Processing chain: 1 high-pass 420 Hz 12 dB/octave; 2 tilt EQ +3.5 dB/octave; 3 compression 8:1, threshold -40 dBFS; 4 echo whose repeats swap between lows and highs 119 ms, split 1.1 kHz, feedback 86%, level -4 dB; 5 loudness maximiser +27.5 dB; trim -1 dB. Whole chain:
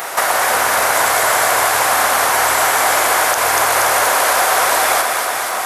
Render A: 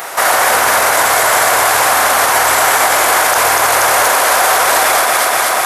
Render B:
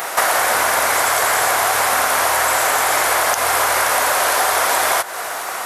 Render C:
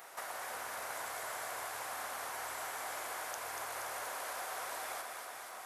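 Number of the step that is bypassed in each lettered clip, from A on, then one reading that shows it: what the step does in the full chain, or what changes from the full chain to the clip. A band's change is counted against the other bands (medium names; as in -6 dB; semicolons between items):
3, crest factor change -3.5 dB; 4, crest factor change +2.5 dB; 5, crest factor change +5.5 dB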